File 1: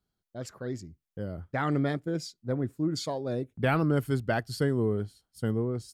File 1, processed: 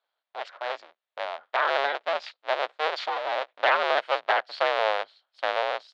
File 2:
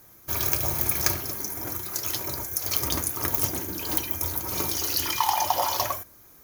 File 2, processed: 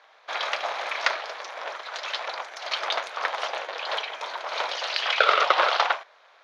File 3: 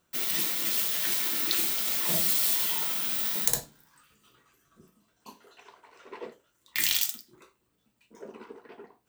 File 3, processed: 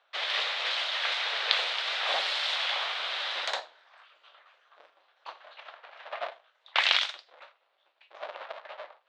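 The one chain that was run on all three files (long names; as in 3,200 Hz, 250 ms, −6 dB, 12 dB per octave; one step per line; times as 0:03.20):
sub-harmonics by changed cycles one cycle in 2, inverted
elliptic band-pass filter 600–3,800 Hz, stop band 70 dB
level +7.5 dB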